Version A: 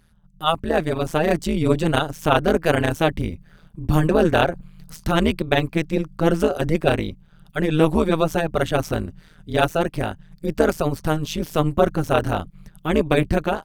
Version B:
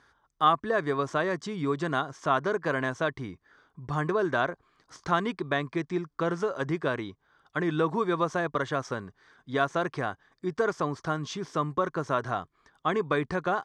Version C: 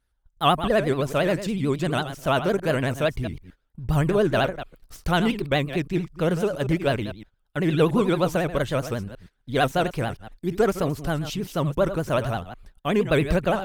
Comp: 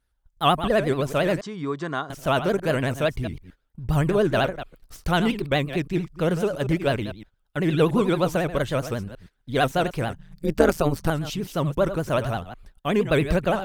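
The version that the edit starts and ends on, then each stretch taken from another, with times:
C
0:01.41–0:02.10: punch in from B
0:10.13–0:11.10: punch in from A

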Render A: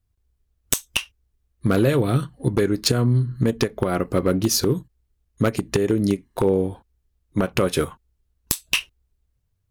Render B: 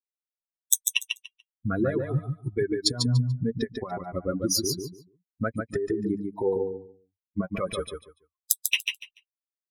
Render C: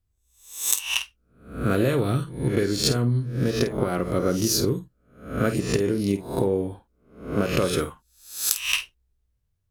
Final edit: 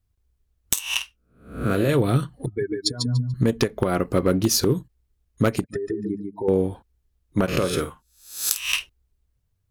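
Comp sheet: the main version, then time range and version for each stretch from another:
A
0:00.73–0:01.89: punch in from C
0:02.46–0:03.34: punch in from B
0:05.64–0:06.48: punch in from B
0:07.48–0:08.79: punch in from C

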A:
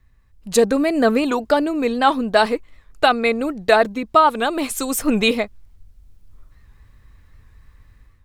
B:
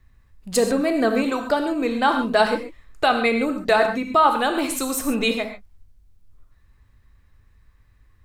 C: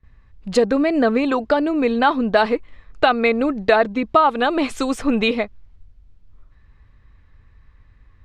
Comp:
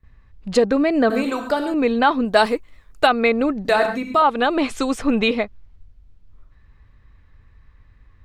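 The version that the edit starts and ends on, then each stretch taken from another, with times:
C
0:01.10–0:01.74: punch in from B
0:02.25–0:03.07: punch in from A
0:03.65–0:04.22: punch in from B

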